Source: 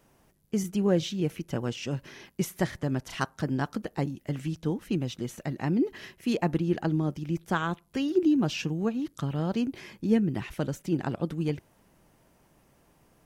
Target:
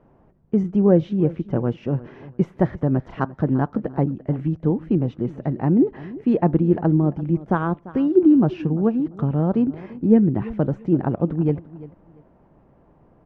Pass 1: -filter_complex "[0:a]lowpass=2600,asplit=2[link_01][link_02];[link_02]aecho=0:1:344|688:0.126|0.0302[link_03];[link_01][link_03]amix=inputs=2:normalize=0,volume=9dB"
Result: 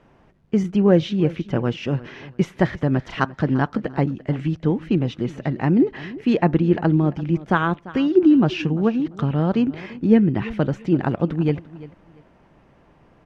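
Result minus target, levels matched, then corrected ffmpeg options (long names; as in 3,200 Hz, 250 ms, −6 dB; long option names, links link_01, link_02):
2,000 Hz band +9.0 dB
-filter_complex "[0:a]lowpass=960,asplit=2[link_01][link_02];[link_02]aecho=0:1:344|688:0.126|0.0302[link_03];[link_01][link_03]amix=inputs=2:normalize=0,volume=9dB"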